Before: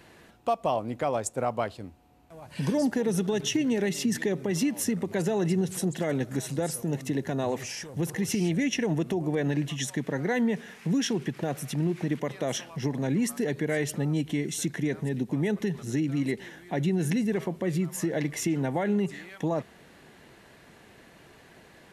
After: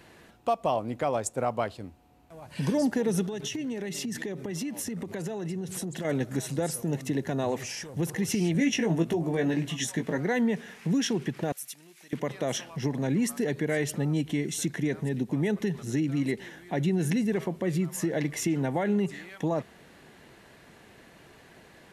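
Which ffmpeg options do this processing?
ffmpeg -i in.wav -filter_complex "[0:a]asettb=1/sr,asplit=3[link_01][link_02][link_03];[link_01]atrim=end=3.244[link_04];[link_02]atrim=start=3.24:end=6.05,asetpts=PTS-STARTPTS,afade=type=in:duration=0.004:curve=qsin,afade=type=out:start_time=2.806:duration=0.004:curve=qsin,acompressor=threshold=-30dB:ratio=6:attack=3.2:release=140:knee=1:detection=peak[link_05];[link_03]atrim=start=6.046[link_06];[link_04][link_05]acrossfade=duration=0.004:curve1=hsin:curve2=qsin[link_07];[link_07][link_06]acrossfade=duration=0.004:curve1=qsin:curve2=hsin,asettb=1/sr,asplit=3[link_08][link_09][link_10];[link_08]atrim=end=8.534[link_11];[link_09]atrim=start=8.53:end=10.18,asetpts=PTS-STARTPTS,afade=type=in:duration=0.004:curve=qsin,afade=type=out:start_time=1.646:duration=0.004:curve=qsin,asplit=2[link_12][link_13];[link_13]adelay=18,volume=-5.5dB[link_14];[link_12][link_14]amix=inputs=2:normalize=0,atrim=end_sample=72765[link_15];[link_10]atrim=start=10.176[link_16];[link_11][link_15]acrossfade=duration=0.004:curve1=hsin:curve2=qsin[link_17];[link_17][link_16]acrossfade=duration=0.004:curve1=qsin:curve2=hsin,asettb=1/sr,asplit=3[link_18][link_19][link_20];[link_18]atrim=end=11.524[link_21];[link_19]atrim=start=11.52:end=12.13,asetpts=PTS-STARTPTS,afade=type=in:duration=0.004:curve=qsin,afade=type=out:start_time=0.606:duration=0.004:curve=qsin,aderivative[link_22];[link_20]atrim=start=12.126[link_23];[link_21][link_22]acrossfade=duration=0.004:curve1=hsin:curve2=qsin[link_24];[link_24][link_23]acrossfade=duration=0.004:curve1=qsin:curve2=hsin" out.wav

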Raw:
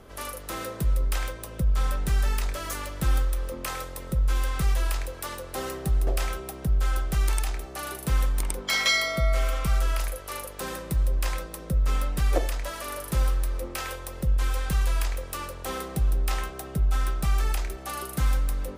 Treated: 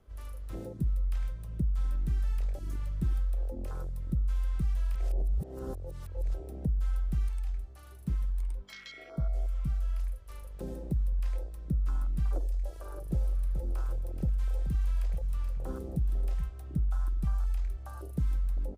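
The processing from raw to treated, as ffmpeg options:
ffmpeg -i in.wav -filter_complex "[0:a]asettb=1/sr,asplit=3[link_01][link_02][link_03];[link_01]atrim=end=7.284[link_04];[link_02]atrim=start=7.28:end=10.29,asetpts=PTS-STARTPTS,afade=type=in:duration=0.004:curve=qsin,afade=type=out:start_time=3.006:duration=0.004:curve=qsin,flanger=delay=4.7:depth=3.2:regen=68:speed=1.4:shape=sinusoidal[link_05];[link_03]atrim=start=10.286[link_06];[link_04][link_05]acrossfade=duration=0.004:curve1=hsin:curve2=qsin[link_07];[link_07][link_06]acrossfade=duration=0.004:curve1=qsin:curve2=hsin,asplit=3[link_08][link_09][link_10];[link_08]afade=type=out:start_time=13.09:duration=0.02[link_11];[link_09]aecho=1:1:429:0.335,afade=type=in:start_time=13.09:duration=0.02,afade=type=out:start_time=16.48:duration=0.02[link_12];[link_10]afade=type=in:start_time=16.48:duration=0.02[link_13];[link_11][link_12][link_13]amix=inputs=3:normalize=0,asplit=3[link_14][link_15][link_16];[link_14]atrim=end=4.952[link_17];[link_15]atrim=start=4.948:end=6.342,asetpts=PTS-STARTPTS,areverse[link_18];[link_16]atrim=start=6.338[link_19];[link_17][link_18]acrossfade=duration=0.004:curve1=hsin:curve2=hsin[link_20];[link_20][link_19]acrossfade=duration=0.004:curve1=hsin:curve2=hsin,afwtdn=0.0355,lowshelf=frequency=170:gain=8.5,acrossover=split=430|4500[link_21][link_22][link_23];[link_21]acompressor=threshold=-26dB:ratio=4[link_24];[link_22]acompressor=threshold=-48dB:ratio=4[link_25];[link_23]acompressor=threshold=-56dB:ratio=4[link_26];[link_24][link_25][link_26]amix=inputs=3:normalize=0,volume=-2.5dB" out.wav

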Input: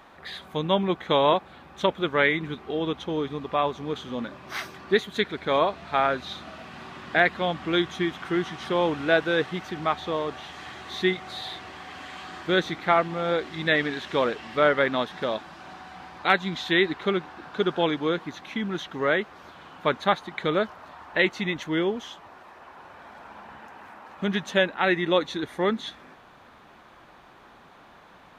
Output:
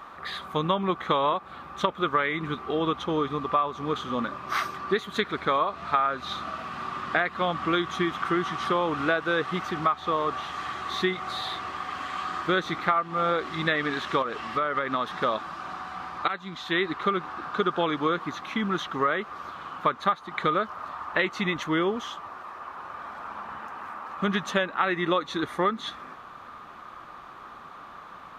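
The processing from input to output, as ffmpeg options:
ffmpeg -i in.wav -filter_complex "[0:a]asettb=1/sr,asplit=3[link_01][link_02][link_03];[link_01]atrim=end=14.224[link_04];[link_02]atrim=start=14.22:end=15.2,asetpts=PTS-STARTPTS,afade=type=in:duration=0.004:curve=qsin,afade=type=out:start_time=0.976:duration=0.004:curve=qsin,acompressor=threshold=-28dB:ratio=5:attack=3.2:release=140:knee=1:detection=peak[link_05];[link_03]atrim=start=15.196[link_06];[link_04][link_05]acrossfade=duration=0.004:curve1=hsin:curve2=qsin[link_07];[link_07][link_06]acrossfade=duration=0.004:curve1=qsin:curve2=hsin,asplit=2[link_08][link_09];[link_08]atrim=end=16.28,asetpts=PTS-STARTPTS,afade=type=out:start_time=16.276:duration=0.004:curve=hsin:silence=0.112202[link_10];[link_09]atrim=start=16.28,asetpts=PTS-STARTPTS,afade=type=in:duration=0.89:silence=0.112202[link_11];[link_10][link_11]concat=n=2:v=0:a=1,equalizer=frequency=1200:width=3.7:gain=14,acompressor=threshold=-22dB:ratio=10,volume=1.5dB" out.wav

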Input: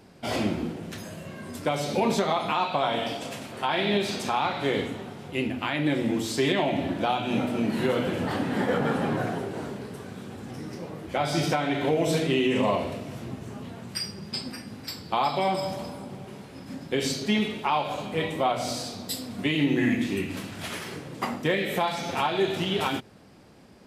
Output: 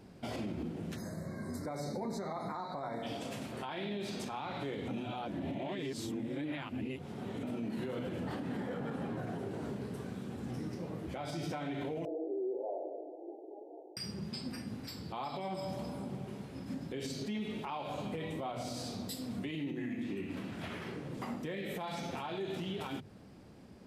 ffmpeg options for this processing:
ffmpeg -i in.wav -filter_complex "[0:a]asplit=3[link_01][link_02][link_03];[link_01]afade=type=out:start_time=0.95:duration=0.02[link_04];[link_02]asuperstop=centerf=2900:order=12:qfactor=1.8,afade=type=in:start_time=0.95:duration=0.02,afade=type=out:start_time=3.02:duration=0.02[link_05];[link_03]afade=type=in:start_time=3.02:duration=0.02[link_06];[link_04][link_05][link_06]amix=inputs=3:normalize=0,asettb=1/sr,asplit=3[link_07][link_08][link_09];[link_07]atrim=end=12.054[link_10];[link_08]atrim=start=12.05:end=13.97,asetpts=PTS-STARTPTS,afade=type=in:duration=0.004:curve=qsin,afade=type=out:start_time=1.916:duration=0.004:curve=qsin,asuperpass=centerf=510:order=20:qfactor=0.93[link_11];[link_09]atrim=start=13.966[link_12];[link_10][link_11]acrossfade=duration=0.004:curve1=hsin:curve2=qsin[link_13];[link_13][link_12]acrossfade=duration=0.004:curve1=qsin:curve2=hsin,asettb=1/sr,asplit=3[link_14][link_15][link_16];[link_14]atrim=end=19.714[link_17];[link_15]atrim=start=19.71:end=21.17,asetpts=PTS-STARTPTS,afade=type=in:duration=0.004:curve=qsin,afade=type=out:start_time=1.456:duration=0.004:curve=qsin,acrossover=split=190|3500[link_18][link_19][link_20];[link_18]acompressor=threshold=-44dB:ratio=4[link_21];[link_19]acompressor=threshold=-29dB:ratio=4[link_22];[link_20]acompressor=threshold=-57dB:ratio=4[link_23];[link_21][link_22][link_23]amix=inputs=3:normalize=0[link_24];[link_16]atrim=start=21.166[link_25];[link_17][link_24]acrossfade=duration=0.004:curve1=hsin:curve2=qsin[link_26];[link_26][link_25]acrossfade=duration=0.004:curve1=qsin:curve2=hsin,asplit=3[link_27][link_28][link_29];[link_27]atrim=end=4.882[link_30];[link_28]atrim=start=4.878:end=7.432,asetpts=PTS-STARTPTS,areverse[link_31];[link_29]atrim=start=7.428[link_32];[link_30][link_31]acrossfade=duration=0.004:curve1=hsin:curve2=hsin[link_33];[link_33][link_32]acrossfade=duration=0.004:curve1=hsin:curve2=hsin,lowshelf=frequency=390:gain=8,bandreject=frequency=50:width_type=h:width=6,bandreject=frequency=100:width_type=h:width=6,bandreject=frequency=150:width_type=h:width=6,alimiter=limit=-23.5dB:level=0:latency=1:release=149,volume=-7dB" out.wav

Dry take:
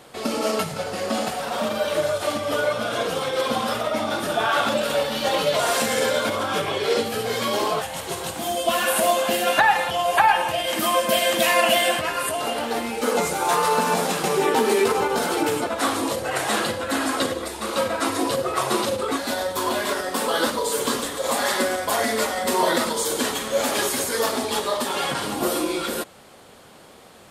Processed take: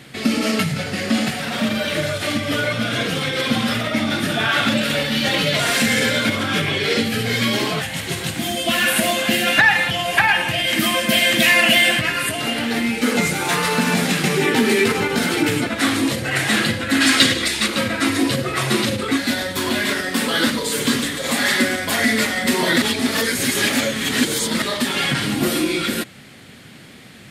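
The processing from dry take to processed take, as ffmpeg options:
ffmpeg -i in.wav -filter_complex "[0:a]asplit=3[link_01][link_02][link_03];[link_01]afade=type=out:start_time=17:duration=0.02[link_04];[link_02]equalizer=frequency=4600:width=0.36:gain=10.5,afade=type=in:start_time=17:duration=0.02,afade=type=out:start_time=17.66:duration=0.02[link_05];[link_03]afade=type=in:start_time=17.66:duration=0.02[link_06];[link_04][link_05][link_06]amix=inputs=3:normalize=0,asplit=3[link_07][link_08][link_09];[link_07]atrim=end=22.822[link_10];[link_08]atrim=start=22.818:end=24.622,asetpts=PTS-STARTPTS,areverse[link_11];[link_09]atrim=start=24.618[link_12];[link_10][link_11]acrossfade=duration=0.004:curve1=hsin:curve2=hsin[link_13];[link_13][link_12]acrossfade=duration=0.004:curve1=hsin:curve2=hsin,equalizer=frequency=125:width_type=o:width=1:gain=11,equalizer=frequency=250:width_type=o:width=1:gain=7,equalizer=frequency=500:width_type=o:width=1:gain=-5,equalizer=frequency=1000:width_type=o:width=1:gain=-8,equalizer=frequency=2000:width_type=o:width=1:gain=10,equalizer=frequency=4000:width_type=o:width=1:gain=3,acontrast=26,volume=-3dB" out.wav

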